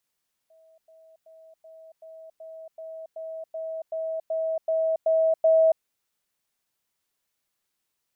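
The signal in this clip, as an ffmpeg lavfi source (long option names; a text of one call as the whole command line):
ffmpeg -f lavfi -i "aevalsrc='pow(10,(-54+3*floor(t/0.38))/20)*sin(2*PI*645*t)*clip(min(mod(t,0.38),0.28-mod(t,0.38))/0.005,0,1)':duration=5.32:sample_rate=44100" out.wav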